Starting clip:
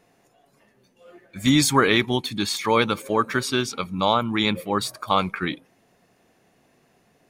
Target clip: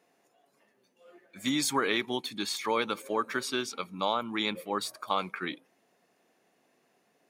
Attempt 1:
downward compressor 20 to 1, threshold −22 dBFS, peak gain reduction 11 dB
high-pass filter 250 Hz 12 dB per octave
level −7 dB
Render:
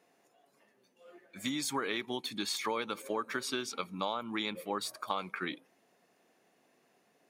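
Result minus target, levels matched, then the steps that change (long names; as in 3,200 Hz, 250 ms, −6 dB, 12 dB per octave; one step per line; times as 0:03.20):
downward compressor: peak gain reduction +7 dB
change: downward compressor 20 to 1, threshold −14.5 dBFS, peak gain reduction 4 dB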